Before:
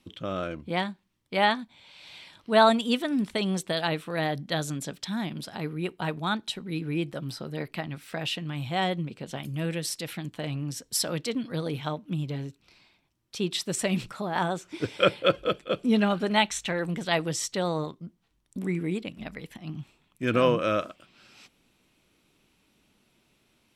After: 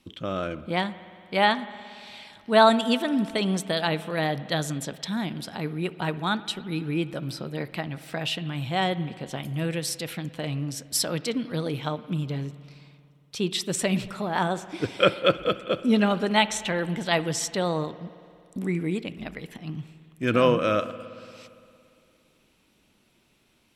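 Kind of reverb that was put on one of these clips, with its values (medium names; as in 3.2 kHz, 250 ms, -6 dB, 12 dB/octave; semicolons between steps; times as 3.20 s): spring tank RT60 2.5 s, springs 57 ms, chirp 70 ms, DRR 15 dB; trim +2 dB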